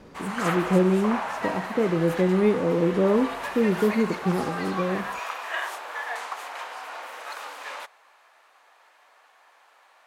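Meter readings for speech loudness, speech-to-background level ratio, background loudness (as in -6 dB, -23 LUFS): -24.5 LUFS, 8.0 dB, -32.5 LUFS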